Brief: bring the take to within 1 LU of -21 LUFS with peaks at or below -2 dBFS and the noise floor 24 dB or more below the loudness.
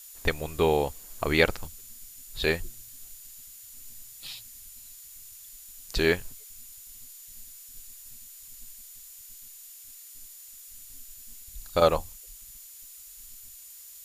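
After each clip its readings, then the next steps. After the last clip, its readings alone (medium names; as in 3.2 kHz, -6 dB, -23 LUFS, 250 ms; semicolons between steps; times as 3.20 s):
steady tone 7 kHz; tone level -53 dBFS; noise floor -48 dBFS; noise floor target -52 dBFS; loudness -27.5 LUFS; peak level -4.5 dBFS; loudness target -21.0 LUFS
-> band-stop 7 kHz, Q 30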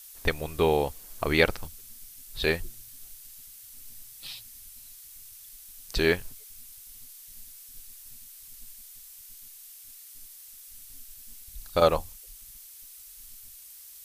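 steady tone not found; noise floor -48 dBFS; noise floor target -52 dBFS
-> noise reduction 6 dB, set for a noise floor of -48 dBFS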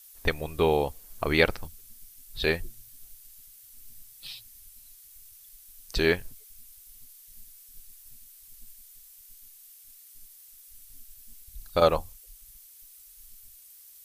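noise floor -52 dBFS; loudness -27.0 LUFS; peak level -4.5 dBFS; loudness target -21.0 LUFS
-> trim +6 dB; peak limiter -2 dBFS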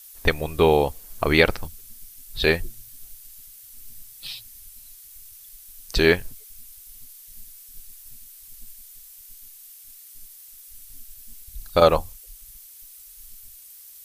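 loudness -21.5 LUFS; peak level -2.0 dBFS; noise floor -46 dBFS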